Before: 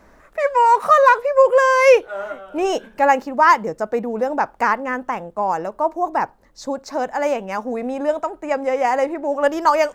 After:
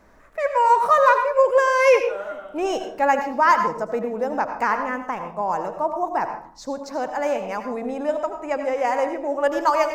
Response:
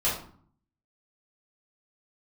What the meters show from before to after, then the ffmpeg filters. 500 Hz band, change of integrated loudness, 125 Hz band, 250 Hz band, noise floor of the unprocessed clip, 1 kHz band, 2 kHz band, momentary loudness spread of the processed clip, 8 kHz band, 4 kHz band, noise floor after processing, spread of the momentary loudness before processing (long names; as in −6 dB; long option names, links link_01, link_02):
−3.0 dB, −3.5 dB, −3.0 dB, −3.5 dB, −51 dBFS, −3.0 dB, −3.5 dB, 12 LU, −3.5 dB, −3.5 dB, −43 dBFS, 13 LU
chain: -filter_complex "[0:a]asplit=2[link_01][link_02];[1:a]atrim=start_sample=2205,adelay=76[link_03];[link_02][link_03]afir=irnorm=-1:irlink=0,volume=-17.5dB[link_04];[link_01][link_04]amix=inputs=2:normalize=0,volume=-4dB"